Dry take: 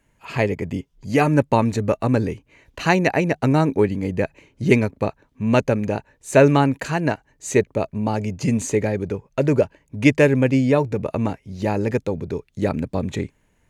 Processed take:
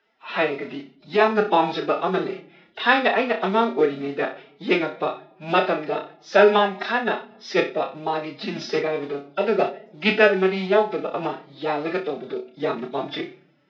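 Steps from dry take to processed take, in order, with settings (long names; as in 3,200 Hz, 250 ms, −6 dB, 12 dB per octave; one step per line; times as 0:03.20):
hearing-aid frequency compression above 3,000 Hz 1.5 to 1
flutter between parallel walls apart 5.3 metres, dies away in 0.31 s
noise that follows the level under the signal 31 dB
high-frequency loss of the air 61 metres
convolution reverb RT60 0.90 s, pre-delay 7 ms, DRR 15.5 dB
phase-vocoder pitch shift with formants kept +6.5 semitones
loudspeaker in its box 490–4,500 Hz, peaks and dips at 550 Hz −4 dB, 930 Hz −3 dB, 2,400 Hz −5 dB, 3,600 Hz +7 dB
level +3.5 dB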